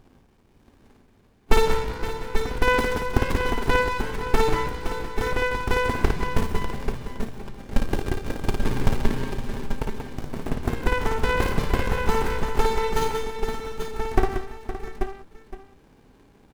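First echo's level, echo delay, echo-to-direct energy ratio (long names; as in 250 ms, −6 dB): −4.5 dB, 56 ms, −1.0 dB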